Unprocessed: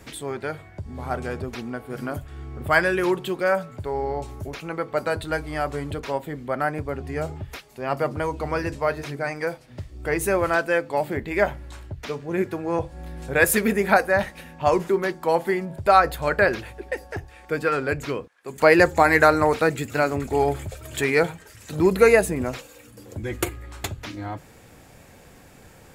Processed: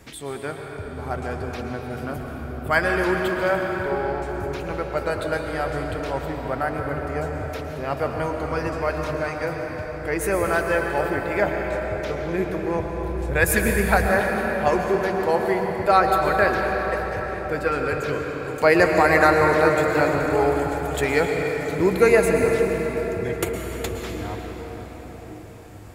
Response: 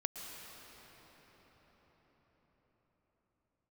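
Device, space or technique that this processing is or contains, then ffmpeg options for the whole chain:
cathedral: -filter_complex "[1:a]atrim=start_sample=2205[link_01];[0:a][link_01]afir=irnorm=-1:irlink=0,asettb=1/sr,asplit=3[link_02][link_03][link_04];[link_02]atrim=end=12.664[link_05];[link_03]atrim=start=12.66:end=14.09,asetpts=PTS-STARTPTS,afade=type=in:duration=0.004:curve=qsin,afade=type=out:start_time=1.426:duration=0.004:curve=qsin,asubboost=boost=9:cutoff=130[link_06];[link_04]atrim=start=14.086[link_07];[link_05][link_06]acrossfade=duration=0.004:curve1=hsin:curve2=qsin[link_08];[link_08][link_07]acrossfade=duration=0.004:curve1=qsin:curve2=hsin"

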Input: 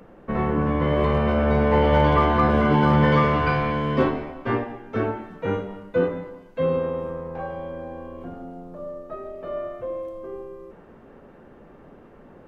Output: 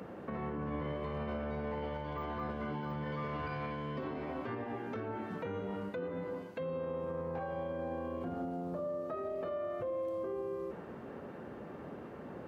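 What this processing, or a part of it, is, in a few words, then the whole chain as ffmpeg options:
broadcast voice chain: -af "highpass=frequency=72:width=0.5412,highpass=frequency=72:width=1.3066,deesser=0.95,acompressor=threshold=-34dB:ratio=5,equalizer=frequency=4400:width_type=o:width=0.21:gain=3,alimiter=level_in=8.5dB:limit=-24dB:level=0:latency=1:release=80,volume=-8.5dB,volume=2dB"

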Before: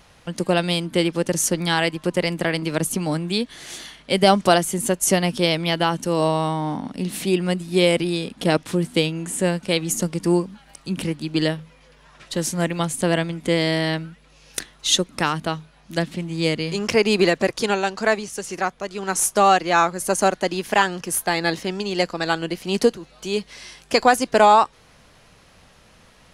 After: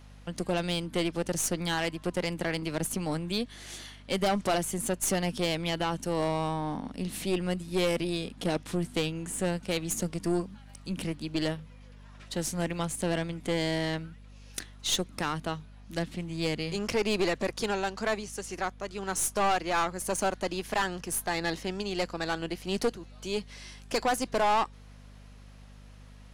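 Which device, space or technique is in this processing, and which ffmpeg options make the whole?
valve amplifier with mains hum: -af "aeval=exprs='(tanh(5.62*val(0)+0.4)-tanh(0.4))/5.62':channel_layout=same,aeval=exprs='val(0)+0.00708*(sin(2*PI*50*n/s)+sin(2*PI*2*50*n/s)/2+sin(2*PI*3*50*n/s)/3+sin(2*PI*4*50*n/s)/4+sin(2*PI*5*50*n/s)/5)':channel_layout=same,volume=-6dB"

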